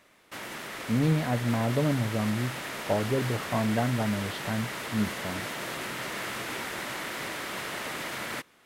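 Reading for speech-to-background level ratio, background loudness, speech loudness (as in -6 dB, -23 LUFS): 5.5 dB, -35.0 LUFS, -29.5 LUFS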